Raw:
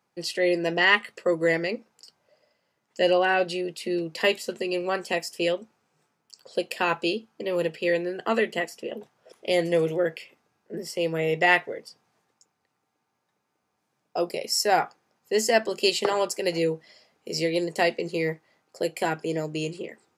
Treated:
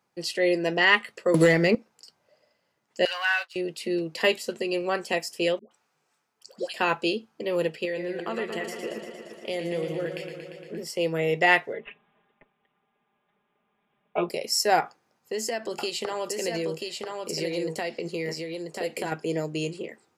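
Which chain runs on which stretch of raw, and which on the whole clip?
1.34–1.75 bell 180 Hz +7 dB 0.82 oct + sample leveller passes 1 + three-band squash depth 100%
3.05–3.56 expander -23 dBFS + sample leveller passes 1 + HPF 1100 Hz 24 dB/oct
5.59–6.74 low shelf 410 Hz -10.5 dB + dispersion highs, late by 0.121 s, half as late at 670 Hz
7.85–10.84 notch 5100 Hz, Q 30 + compressor 2.5:1, threshold -30 dBFS + warbling echo 0.116 s, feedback 77%, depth 72 cents, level -8 dB
11.73–14.29 LPF 9700 Hz 24 dB/oct + comb 4.9 ms, depth 94% + careless resampling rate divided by 6×, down none, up filtered
14.8–19.12 compressor 4:1, threshold -27 dBFS + echo 0.987 s -4 dB
whole clip: dry

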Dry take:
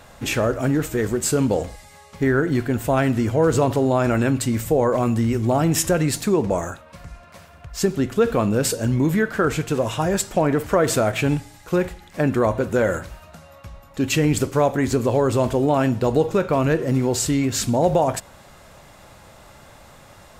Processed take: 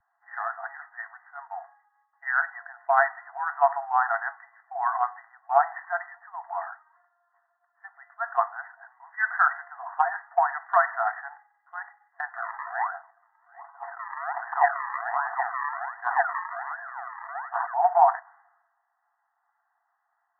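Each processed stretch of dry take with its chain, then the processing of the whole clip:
12.38–17.74 decimation with a swept rate 41× 1.3 Hz + air absorption 440 m + backwards sustainer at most 21 dB/s
whole clip: FFT band-pass 670–2000 Hz; three-band expander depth 100%

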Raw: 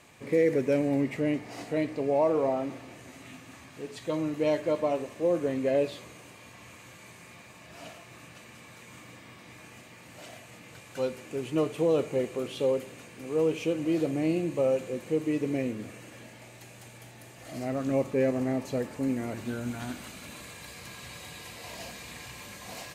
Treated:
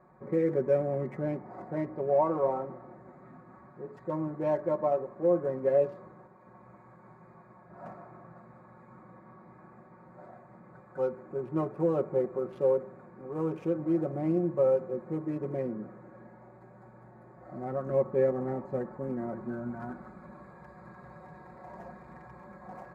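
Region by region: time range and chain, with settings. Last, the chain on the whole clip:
6.27–8.94 split-band echo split 2200 Hz, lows 0.191 s, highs 0.118 s, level -6 dB + three-band expander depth 100%
whole clip: Wiener smoothing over 15 samples; resonant high shelf 2000 Hz -14 dB, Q 1.5; comb 5.4 ms, depth 84%; gain -3.5 dB

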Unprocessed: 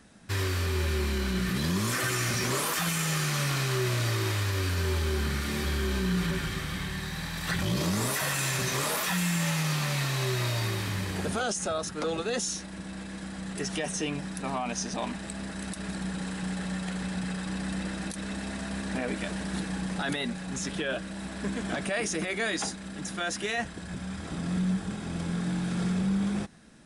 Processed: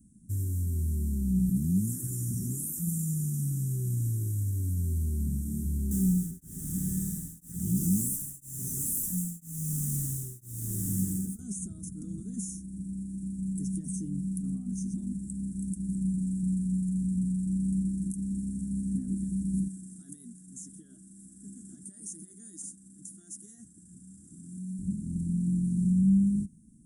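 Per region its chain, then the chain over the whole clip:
5.91–11.39 overdrive pedal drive 32 dB, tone 7400 Hz, clips at -17 dBFS + beating tremolo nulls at 1 Hz
19.68–24.79 HPF 860 Hz 6 dB/oct + notch 2300 Hz, Q 5.7
whole clip: inverse Chebyshev band-stop 490–4600 Hz, stop band 40 dB; dynamic EQ 190 Hz, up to +6 dB, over -45 dBFS, Q 7.5

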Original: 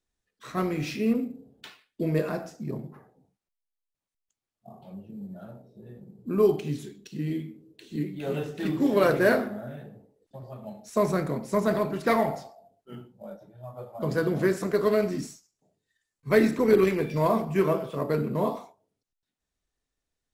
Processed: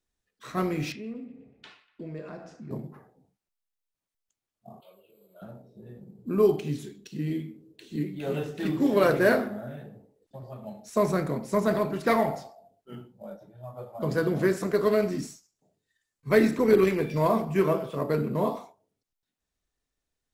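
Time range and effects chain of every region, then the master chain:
0.92–2.71 air absorption 92 m + compressor 2:1, threshold -45 dBFS + narrowing echo 0.121 s, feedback 68%, band-pass 1700 Hz, level -15 dB
4.8–5.42 HPF 500 Hz + high shelf 2900 Hz +8.5 dB + fixed phaser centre 1200 Hz, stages 8
whole clip: dry

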